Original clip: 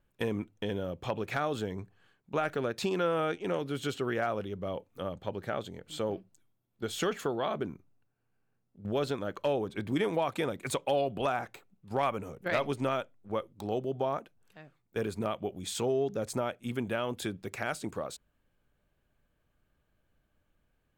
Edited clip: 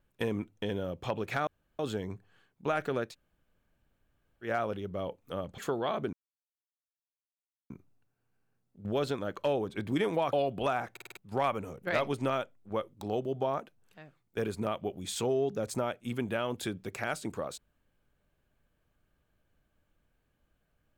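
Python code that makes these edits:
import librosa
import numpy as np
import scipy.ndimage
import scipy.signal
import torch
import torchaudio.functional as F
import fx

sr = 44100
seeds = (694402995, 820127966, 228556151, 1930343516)

y = fx.edit(x, sr, fx.insert_room_tone(at_s=1.47, length_s=0.32),
    fx.room_tone_fill(start_s=2.78, length_s=1.36, crossfade_s=0.1),
    fx.cut(start_s=5.26, length_s=1.89),
    fx.insert_silence(at_s=7.7, length_s=1.57),
    fx.cut(start_s=10.33, length_s=0.59),
    fx.stutter_over(start_s=11.51, slice_s=0.05, count=5), tone=tone)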